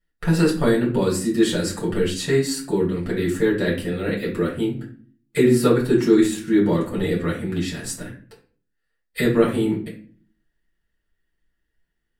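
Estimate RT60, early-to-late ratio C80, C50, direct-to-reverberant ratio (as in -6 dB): 0.45 s, 13.0 dB, 7.5 dB, -5.5 dB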